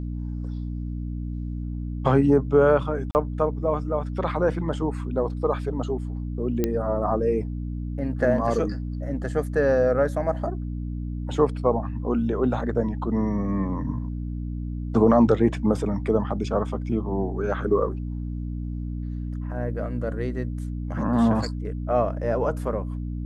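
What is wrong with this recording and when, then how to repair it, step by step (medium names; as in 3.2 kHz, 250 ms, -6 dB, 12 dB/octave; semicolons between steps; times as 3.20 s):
hum 60 Hz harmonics 5 -30 dBFS
3.11–3.15 s: dropout 39 ms
6.64 s: pop -10 dBFS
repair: de-click; de-hum 60 Hz, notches 5; interpolate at 3.11 s, 39 ms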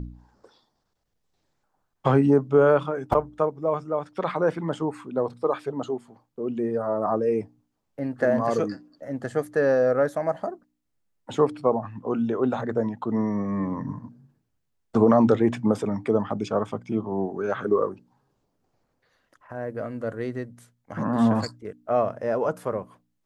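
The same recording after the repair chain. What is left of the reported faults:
nothing left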